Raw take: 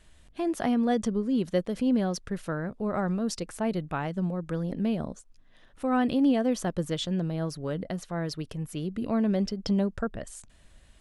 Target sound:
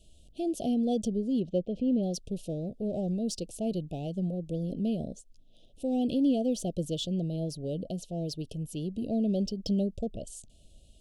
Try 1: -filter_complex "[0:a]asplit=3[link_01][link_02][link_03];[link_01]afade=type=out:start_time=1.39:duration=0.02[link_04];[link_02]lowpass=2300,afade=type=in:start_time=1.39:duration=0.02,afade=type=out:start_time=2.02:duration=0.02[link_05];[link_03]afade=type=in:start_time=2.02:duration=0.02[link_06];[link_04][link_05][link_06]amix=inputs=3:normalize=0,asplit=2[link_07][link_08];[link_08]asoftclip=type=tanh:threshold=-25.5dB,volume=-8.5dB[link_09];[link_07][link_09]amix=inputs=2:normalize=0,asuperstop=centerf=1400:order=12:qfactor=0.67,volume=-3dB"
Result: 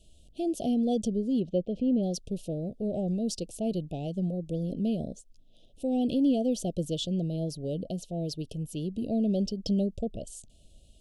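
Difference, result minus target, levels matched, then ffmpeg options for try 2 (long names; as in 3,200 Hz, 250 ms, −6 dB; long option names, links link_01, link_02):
soft clipping: distortion −7 dB
-filter_complex "[0:a]asplit=3[link_01][link_02][link_03];[link_01]afade=type=out:start_time=1.39:duration=0.02[link_04];[link_02]lowpass=2300,afade=type=in:start_time=1.39:duration=0.02,afade=type=out:start_time=2.02:duration=0.02[link_05];[link_03]afade=type=in:start_time=2.02:duration=0.02[link_06];[link_04][link_05][link_06]amix=inputs=3:normalize=0,asplit=2[link_07][link_08];[link_08]asoftclip=type=tanh:threshold=-36.5dB,volume=-8.5dB[link_09];[link_07][link_09]amix=inputs=2:normalize=0,asuperstop=centerf=1400:order=12:qfactor=0.67,volume=-3dB"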